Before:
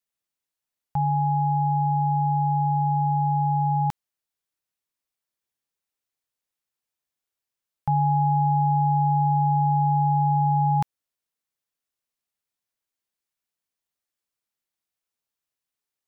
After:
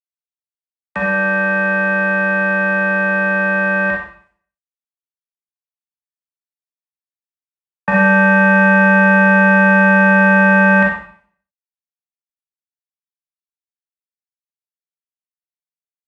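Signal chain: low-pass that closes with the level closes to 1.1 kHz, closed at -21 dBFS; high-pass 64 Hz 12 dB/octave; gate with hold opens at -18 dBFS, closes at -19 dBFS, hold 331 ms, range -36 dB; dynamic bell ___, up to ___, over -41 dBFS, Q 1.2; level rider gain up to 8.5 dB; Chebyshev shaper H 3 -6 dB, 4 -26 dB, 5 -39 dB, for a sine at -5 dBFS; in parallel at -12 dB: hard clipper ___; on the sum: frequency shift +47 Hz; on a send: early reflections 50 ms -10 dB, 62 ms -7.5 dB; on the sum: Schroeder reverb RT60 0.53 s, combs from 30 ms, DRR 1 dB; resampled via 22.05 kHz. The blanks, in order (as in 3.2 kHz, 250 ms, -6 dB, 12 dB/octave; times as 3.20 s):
590 Hz, +3 dB, -19 dBFS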